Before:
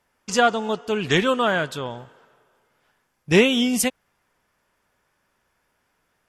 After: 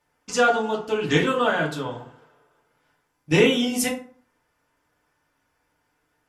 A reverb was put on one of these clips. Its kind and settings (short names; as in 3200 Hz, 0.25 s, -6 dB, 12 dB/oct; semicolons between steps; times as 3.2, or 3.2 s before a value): FDN reverb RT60 0.45 s, low-frequency decay 1.1×, high-frequency decay 0.6×, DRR -2.5 dB; gain -5.5 dB